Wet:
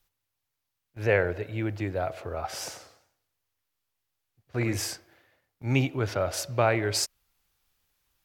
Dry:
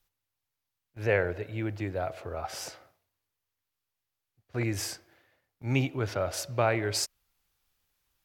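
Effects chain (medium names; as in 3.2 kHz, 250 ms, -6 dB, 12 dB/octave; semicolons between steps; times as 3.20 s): 2.51–4.77 s: modulated delay 96 ms, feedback 34%, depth 204 cents, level -9 dB; trim +2.5 dB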